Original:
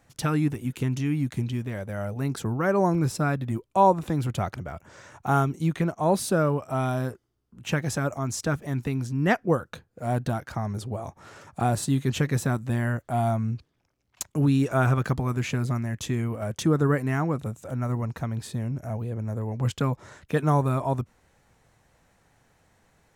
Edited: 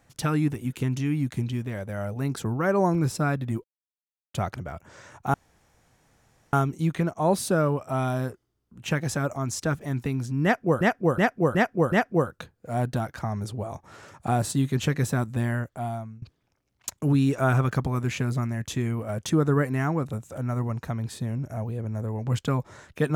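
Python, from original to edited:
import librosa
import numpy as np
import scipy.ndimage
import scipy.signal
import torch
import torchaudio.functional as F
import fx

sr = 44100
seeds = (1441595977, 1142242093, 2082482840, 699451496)

y = fx.edit(x, sr, fx.silence(start_s=3.64, length_s=0.7),
    fx.insert_room_tone(at_s=5.34, length_s=1.19),
    fx.repeat(start_s=9.25, length_s=0.37, count=5),
    fx.fade_out_to(start_s=12.78, length_s=0.77, floor_db=-24.0), tone=tone)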